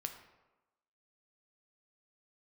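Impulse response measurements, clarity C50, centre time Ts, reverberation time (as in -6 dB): 8.5 dB, 18 ms, 1.1 s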